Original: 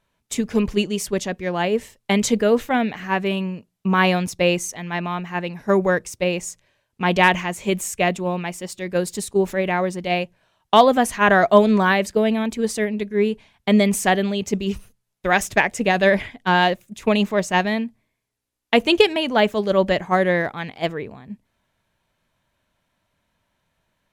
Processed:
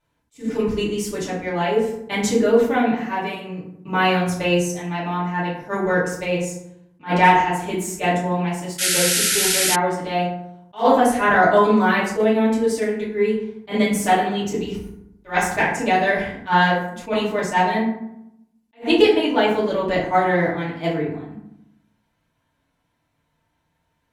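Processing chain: FDN reverb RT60 0.79 s, low-frequency decay 1.35×, high-frequency decay 0.5×, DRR -8 dB; painted sound noise, 8.78–9.76, 1300–12000 Hz -11 dBFS; attack slew limiter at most 270 dB/s; gain -8.5 dB

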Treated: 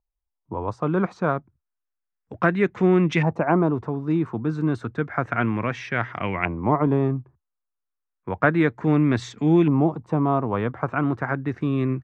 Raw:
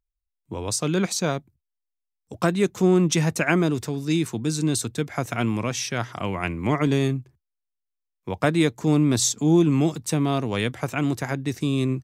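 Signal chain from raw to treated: LFO low-pass saw up 0.31 Hz 870–2200 Hz

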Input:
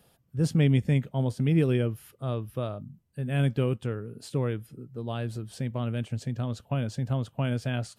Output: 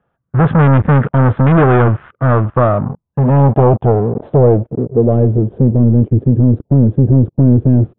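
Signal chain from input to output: sample leveller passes 5; downsampling 8000 Hz; low-pass sweep 1400 Hz -> 350 Hz, 2.16–5.89; gain +5.5 dB

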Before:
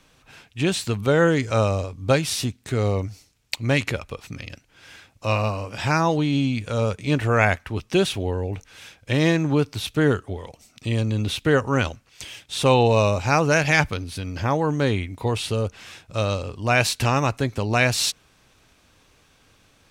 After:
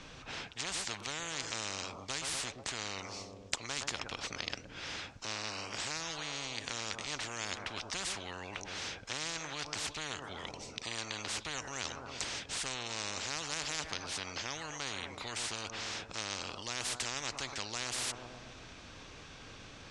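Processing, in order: LPF 6800 Hz 24 dB/oct; analogue delay 0.12 s, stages 1024, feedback 46%, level -17 dB; spectral compressor 10:1; gain -7 dB

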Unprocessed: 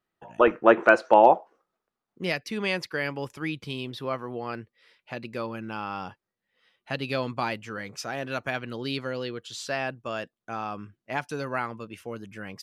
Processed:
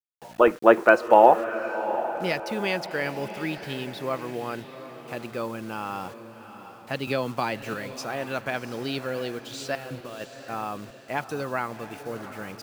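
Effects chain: bell 540 Hz +3 dB 2.4 oct; 9.75–10.21 negative-ratio compressor -38 dBFS, ratio -1; bit-crush 8-bit; on a send: diffused feedback echo 0.733 s, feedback 45%, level -11.5 dB; 7.07–7.74 on the sum: three-band squash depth 70%; gain -1 dB

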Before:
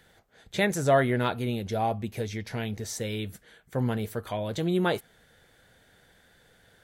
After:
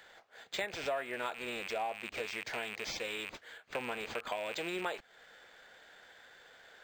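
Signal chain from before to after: rattling part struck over -37 dBFS, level -27 dBFS; HPF 610 Hz 12 dB/oct; compressor 5:1, threshold -40 dBFS, peak gain reduction 18.5 dB; decimation joined by straight lines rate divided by 4×; gain +5.5 dB

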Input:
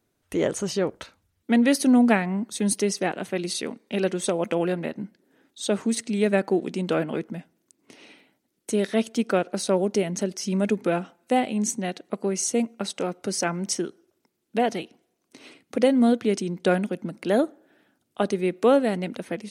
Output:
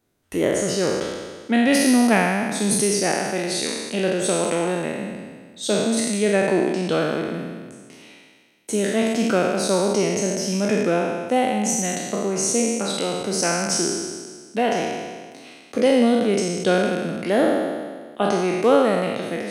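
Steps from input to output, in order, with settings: spectral trails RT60 1.63 s

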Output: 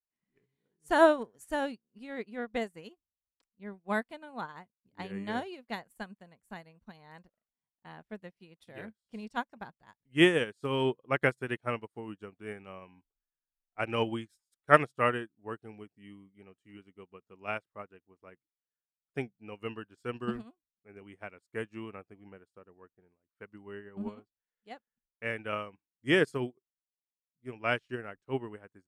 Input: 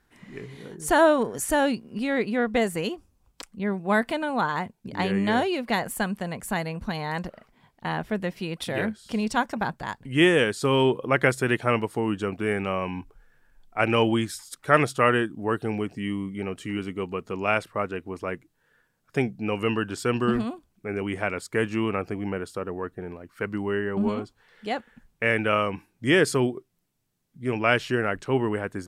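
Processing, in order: upward expander 2.5:1, over -41 dBFS

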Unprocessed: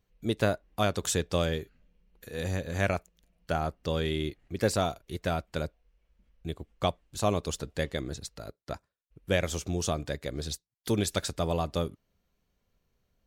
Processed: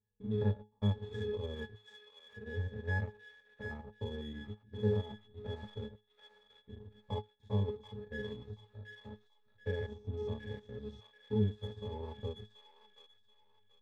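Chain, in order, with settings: stepped spectrum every 0.1 s; bell 980 Hz +3 dB 1.7 oct; octave resonator A, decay 0.23 s; transient shaper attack +1 dB, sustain -6 dB; in parallel at -5 dB: backlash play -47 dBFS; on the sum: varispeed -4%; on a send: thin delay 0.732 s, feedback 31%, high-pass 1600 Hz, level -4 dB; on the sum: gain +2.5 dB

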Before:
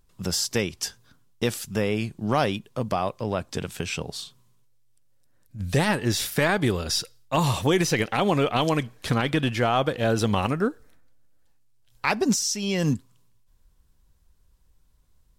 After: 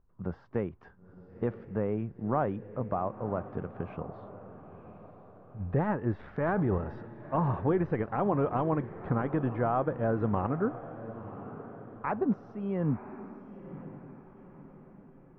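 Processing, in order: LPF 1400 Hz 24 dB/oct; 6.19–6.78 transient shaper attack -4 dB, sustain +10 dB; on a send: diffused feedback echo 0.988 s, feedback 46%, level -13.5 dB; on the sum: gain -5.5 dB

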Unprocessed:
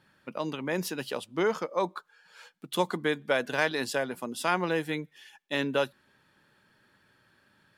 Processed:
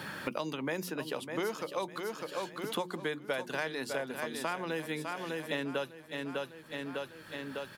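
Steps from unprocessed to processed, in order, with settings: high shelf 12000 Hz +7 dB; notches 60/120/180/240/300/360 Hz; feedback echo 0.602 s, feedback 40%, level -10 dB; three-band squash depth 100%; gain -6 dB

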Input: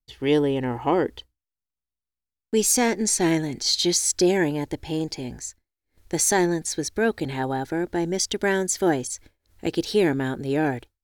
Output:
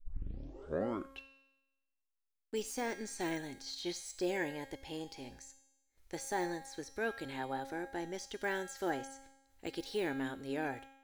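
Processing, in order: tape start at the beginning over 1.36 s; de-esser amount 85%; bell 160 Hz -10 dB 2.6 oct; resonator 270 Hz, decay 0.96 s, mix 80%; on a send: reverb, pre-delay 90 ms, DRR 23 dB; on the sum: gain +3 dB

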